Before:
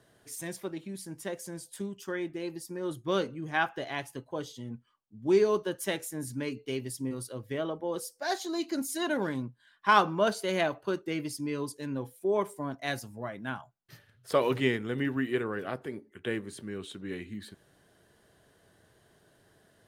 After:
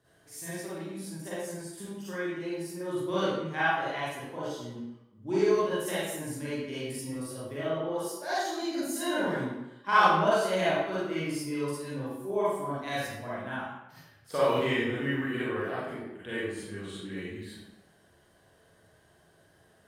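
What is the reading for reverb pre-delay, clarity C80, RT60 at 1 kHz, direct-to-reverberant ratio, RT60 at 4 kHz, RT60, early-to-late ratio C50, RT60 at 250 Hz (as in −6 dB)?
37 ms, 1.0 dB, 0.95 s, −10.5 dB, 0.70 s, 0.95 s, −4.0 dB, 0.90 s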